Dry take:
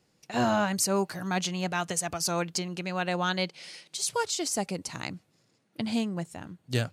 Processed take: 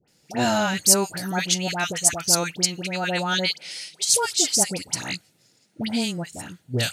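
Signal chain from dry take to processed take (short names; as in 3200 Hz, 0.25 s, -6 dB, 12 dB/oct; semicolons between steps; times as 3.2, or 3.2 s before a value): high shelf 2700 Hz +10 dB; notch 1100 Hz, Q 6.4; dispersion highs, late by 81 ms, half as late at 1400 Hz; gain +3 dB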